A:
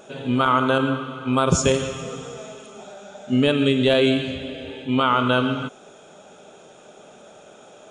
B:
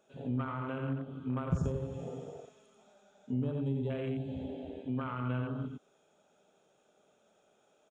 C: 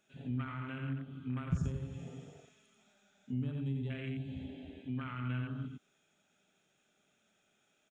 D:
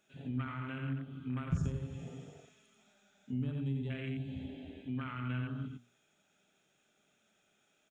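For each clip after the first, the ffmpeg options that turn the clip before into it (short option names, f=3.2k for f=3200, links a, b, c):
-filter_complex "[0:a]afwtdn=0.0631,aecho=1:1:88:0.562,acrossover=split=170[a][b];[b]acompressor=threshold=-29dB:ratio=10[c];[a][c]amix=inputs=2:normalize=0,volume=-7.5dB"
-af "equalizer=f=500:t=o:w=1:g=-12,equalizer=f=1k:t=o:w=1:g=-8,equalizer=f=2k:t=o:w=1:g=7,volume=-1dB"
-af "bandreject=f=60:t=h:w=6,bandreject=f=120:t=h:w=6,bandreject=f=180:t=h:w=6,bandreject=f=240:t=h:w=6,volume=1dB"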